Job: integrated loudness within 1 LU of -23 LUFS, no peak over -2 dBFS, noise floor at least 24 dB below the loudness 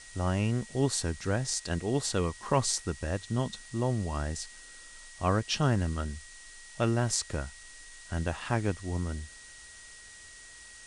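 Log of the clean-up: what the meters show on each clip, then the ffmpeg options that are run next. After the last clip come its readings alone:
steady tone 1.9 kHz; tone level -52 dBFS; noise floor -50 dBFS; noise floor target -55 dBFS; loudness -31.0 LUFS; peak level -11.0 dBFS; loudness target -23.0 LUFS
-> -af "bandreject=f=1900:w=30"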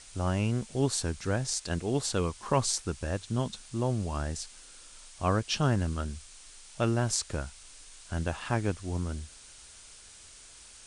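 steady tone not found; noise floor -52 dBFS; noise floor target -55 dBFS
-> -af "afftdn=nr=6:nf=-52"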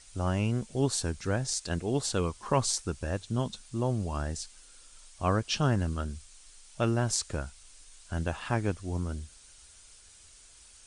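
noise floor -55 dBFS; loudness -31.0 LUFS; peak level -11.0 dBFS; loudness target -23.0 LUFS
-> -af "volume=2.51"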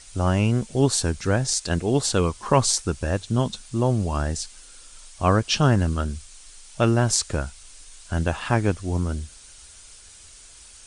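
loudness -23.0 LUFS; peak level -3.0 dBFS; noise floor -47 dBFS

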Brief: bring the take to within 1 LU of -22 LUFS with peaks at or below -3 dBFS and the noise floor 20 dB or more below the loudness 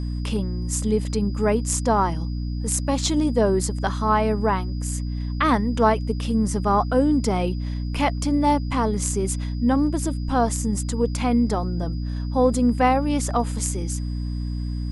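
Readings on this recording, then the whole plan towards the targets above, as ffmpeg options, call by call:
hum 60 Hz; highest harmonic 300 Hz; hum level -24 dBFS; steady tone 4.9 kHz; tone level -48 dBFS; loudness -23.0 LUFS; peak level -5.5 dBFS; loudness target -22.0 LUFS
-> -af "bandreject=f=60:t=h:w=4,bandreject=f=120:t=h:w=4,bandreject=f=180:t=h:w=4,bandreject=f=240:t=h:w=4,bandreject=f=300:t=h:w=4"
-af "bandreject=f=4900:w=30"
-af "volume=1.12"

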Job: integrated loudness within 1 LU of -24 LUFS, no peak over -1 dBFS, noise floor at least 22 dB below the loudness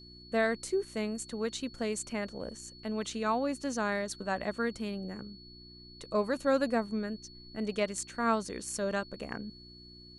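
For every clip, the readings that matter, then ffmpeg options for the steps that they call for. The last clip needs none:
hum 60 Hz; highest harmonic 360 Hz; hum level -53 dBFS; steady tone 4.4 kHz; tone level -52 dBFS; loudness -33.5 LUFS; peak level -15.5 dBFS; loudness target -24.0 LUFS
-> -af "bandreject=f=60:t=h:w=4,bandreject=f=120:t=h:w=4,bandreject=f=180:t=h:w=4,bandreject=f=240:t=h:w=4,bandreject=f=300:t=h:w=4,bandreject=f=360:t=h:w=4"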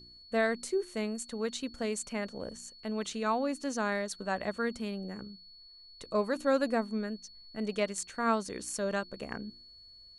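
hum not found; steady tone 4.4 kHz; tone level -52 dBFS
-> -af "bandreject=f=4400:w=30"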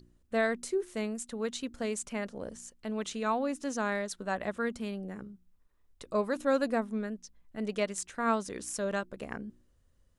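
steady tone not found; loudness -34.0 LUFS; peak level -15.5 dBFS; loudness target -24.0 LUFS
-> -af "volume=3.16"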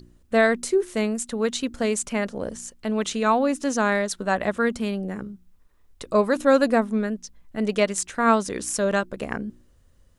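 loudness -24.0 LUFS; peak level -5.5 dBFS; noise floor -58 dBFS

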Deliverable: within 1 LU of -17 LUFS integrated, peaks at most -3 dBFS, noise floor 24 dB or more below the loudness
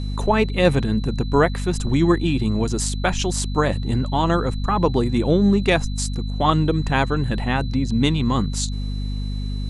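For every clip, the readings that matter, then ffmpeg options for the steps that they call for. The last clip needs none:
hum 50 Hz; highest harmonic 250 Hz; hum level -23 dBFS; steady tone 4 kHz; tone level -41 dBFS; loudness -21.0 LUFS; peak level -3.5 dBFS; loudness target -17.0 LUFS
-> -af "bandreject=f=50:t=h:w=6,bandreject=f=100:t=h:w=6,bandreject=f=150:t=h:w=6,bandreject=f=200:t=h:w=6,bandreject=f=250:t=h:w=6"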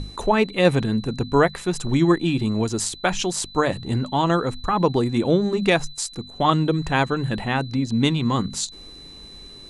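hum not found; steady tone 4 kHz; tone level -41 dBFS
-> -af "bandreject=f=4000:w=30"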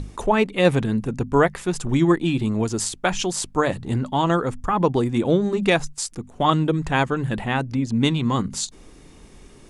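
steady tone not found; loudness -22.0 LUFS; peak level -4.5 dBFS; loudness target -17.0 LUFS
-> -af "volume=1.78,alimiter=limit=0.708:level=0:latency=1"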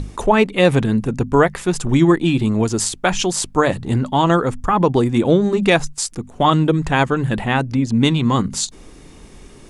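loudness -17.5 LUFS; peak level -3.0 dBFS; noise floor -42 dBFS

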